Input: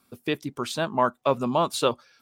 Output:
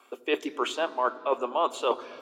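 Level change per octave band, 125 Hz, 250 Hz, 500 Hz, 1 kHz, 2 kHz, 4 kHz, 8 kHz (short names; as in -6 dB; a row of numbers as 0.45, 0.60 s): under -30 dB, -6.5 dB, -2.0 dB, -2.0 dB, -0.5 dB, -3.0 dB, -7.5 dB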